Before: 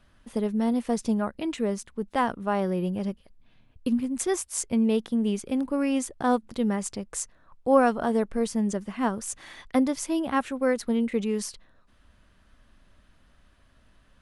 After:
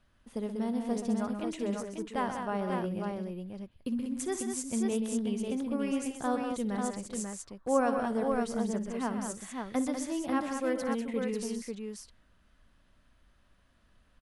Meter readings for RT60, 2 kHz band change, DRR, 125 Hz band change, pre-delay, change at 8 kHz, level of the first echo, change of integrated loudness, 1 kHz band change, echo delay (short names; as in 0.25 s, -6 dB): none, -5.5 dB, none, -5.5 dB, none, -5.5 dB, -15.0 dB, -6.0 dB, -5.5 dB, 59 ms